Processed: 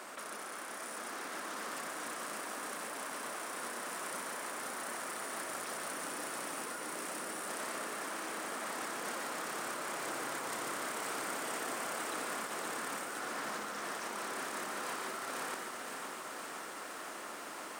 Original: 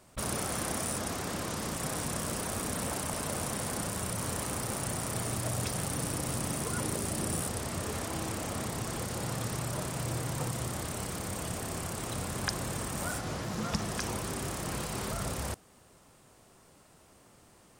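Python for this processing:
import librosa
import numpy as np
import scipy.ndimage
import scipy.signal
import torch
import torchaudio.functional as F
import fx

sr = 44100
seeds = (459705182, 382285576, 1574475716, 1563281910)

y = scipy.signal.sosfilt(scipy.signal.butter(4, 260.0, 'highpass', fs=sr, output='sos'), x)
y = fx.peak_eq(y, sr, hz=1500.0, db=10.0, octaves=1.5)
y = fx.over_compress(y, sr, threshold_db=-43.0, ratio=-1.0)
y = y + 10.0 ** (-6.0 / 20.0) * np.pad(y, (int(140 * sr / 1000.0), 0))[:len(y)]
y = fx.echo_crushed(y, sr, ms=515, feedback_pct=80, bits=10, wet_db=-7)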